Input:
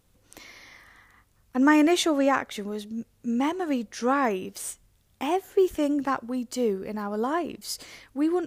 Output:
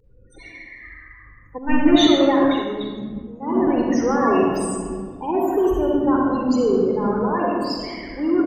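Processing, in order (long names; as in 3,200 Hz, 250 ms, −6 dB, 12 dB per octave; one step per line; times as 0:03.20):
0:07.07–0:07.60: high-pass filter 1,200 Hz → 340 Hz 6 dB per octave
in parallel at −2 dB: downward compressor 16 to 1, threshold −32 dBFS, peak gain reduction 18.5 dB
on the sum: transient designer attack −4 dB, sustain +7 dB
sine wavefolder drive 7 dB, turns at −7.5 dBFS
bit reduction 9 bits
spectral peaks only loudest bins 16
echo with shifted repeats 108 ms, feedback 54%, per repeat −79 Hz, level −22 dB
convolution reverb RT60 2.0 s, pre-delay 40 ms, DRR −2 dB
0:01.58–0:03.67: multiband upward and downward expander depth 70%
level −10 dB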